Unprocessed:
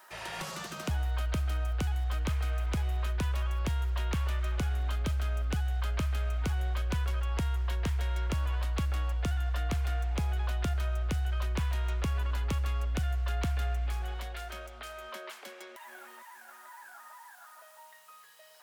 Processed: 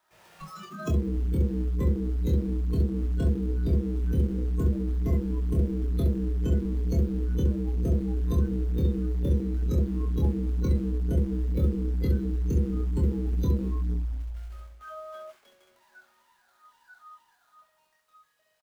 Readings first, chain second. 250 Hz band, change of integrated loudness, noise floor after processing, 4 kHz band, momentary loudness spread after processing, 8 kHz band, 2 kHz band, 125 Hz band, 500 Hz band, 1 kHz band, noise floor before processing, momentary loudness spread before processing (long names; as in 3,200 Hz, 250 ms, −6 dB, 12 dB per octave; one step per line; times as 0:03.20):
+12.5 dB, +5.0 dB, −68 dBFS, −10.5 dB, 10 LU, can't be measured, −11.0 dB, +5.0 dB, +8.0 dB, −7.5 dB, −54 dBFS, 16 LU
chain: each half-wave held at its own peak
ambience of single reflections 25 ms −4.5 dB, 67 ms −3.5 dB
noise reduction from a noise print of the clip's start 22 dB